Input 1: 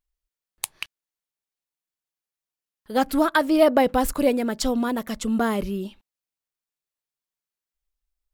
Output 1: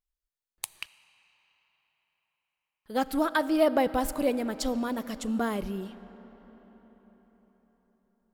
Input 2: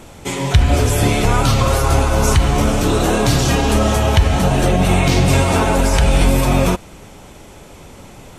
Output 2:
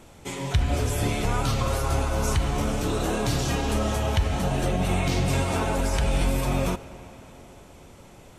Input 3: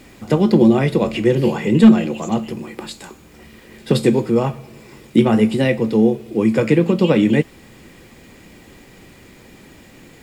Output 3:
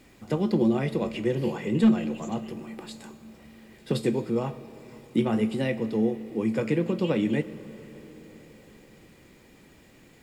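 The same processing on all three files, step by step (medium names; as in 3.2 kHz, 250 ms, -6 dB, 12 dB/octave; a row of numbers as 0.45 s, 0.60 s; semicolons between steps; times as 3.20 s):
algorithmic reverb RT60 5 s, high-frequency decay 0.65×, pre-delay 0 ms, DRR 15 dB; peak normalisation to -12 dBFS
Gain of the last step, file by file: -6.5 dB, -10.5 dB, -11.0 dB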